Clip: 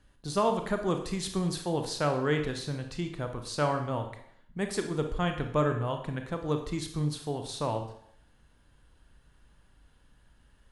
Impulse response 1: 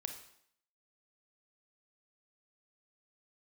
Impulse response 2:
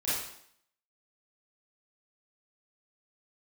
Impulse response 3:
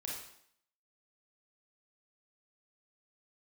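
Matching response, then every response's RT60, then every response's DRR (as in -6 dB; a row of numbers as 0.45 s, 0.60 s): 1; 0.65 s, 0.65 s, 0.65 s; 5.0 dB, -11.5 dB, -3.5 dB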